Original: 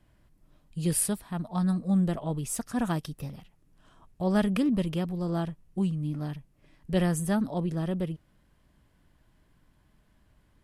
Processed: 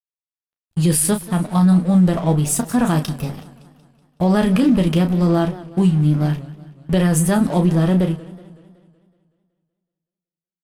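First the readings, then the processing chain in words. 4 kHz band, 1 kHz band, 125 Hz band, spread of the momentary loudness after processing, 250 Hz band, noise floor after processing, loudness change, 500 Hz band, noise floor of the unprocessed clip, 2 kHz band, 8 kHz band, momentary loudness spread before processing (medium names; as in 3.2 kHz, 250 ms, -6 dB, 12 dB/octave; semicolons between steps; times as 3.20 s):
+11.0 dB, +11.5 dB, +13.0 dB, 12 LU, +12.0 dB, under -85 dBFS, +12.0 dB, +11.0 dB, -66 dBFS, +10.0 dB, +10.5 dB, 10 LU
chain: crossover distortion -49.5 dBFS; gate -52 dBFS, range -14 dB; early reflections 12 ms -10 dB, 33 ms -8.5 dB; loudness maximiser +20 dB; modulated delay 187 ms, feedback 54%, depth 160 cents, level -18 dB; trim -6.5 dB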